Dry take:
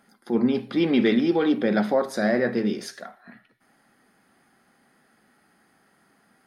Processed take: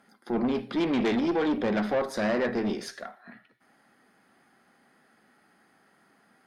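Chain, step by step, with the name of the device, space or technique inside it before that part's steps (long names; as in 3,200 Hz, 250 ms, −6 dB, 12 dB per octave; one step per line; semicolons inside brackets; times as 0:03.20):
tube preamp driven hard (tube saturation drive 22 dB, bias 0.4; low-shelf EQ 140 Hz −7 dB; high-shelf EQ 6,400 Hz −6.5 dB)
level +1.5 dB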